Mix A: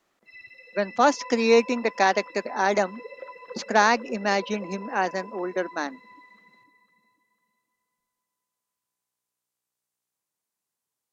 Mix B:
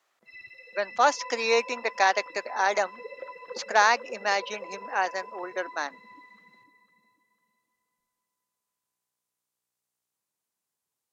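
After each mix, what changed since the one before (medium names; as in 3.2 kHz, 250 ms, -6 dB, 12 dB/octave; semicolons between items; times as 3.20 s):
speech: add high-pass 620 Hz 12 dB/octave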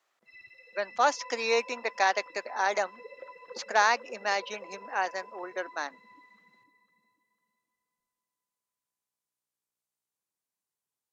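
speech -3.0 dB; background -5.5 dB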